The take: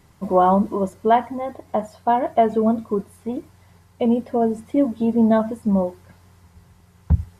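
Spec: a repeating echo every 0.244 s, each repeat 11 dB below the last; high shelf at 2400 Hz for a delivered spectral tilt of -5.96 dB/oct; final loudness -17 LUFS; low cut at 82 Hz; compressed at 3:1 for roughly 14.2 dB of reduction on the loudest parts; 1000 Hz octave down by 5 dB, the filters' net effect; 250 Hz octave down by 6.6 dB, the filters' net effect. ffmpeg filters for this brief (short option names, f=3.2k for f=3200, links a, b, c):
-af "highpass=82,equalizer=f=250:t=o:g=-7.5,equalizer=f=1k:t=o:g=-6,highshelf=f=2.4k:g=-7,acompressor=threshold=-35dB:ratio=3,aecho=1:1:244|488|732:0.282|0.0789|0.0221,volume=19.5dB"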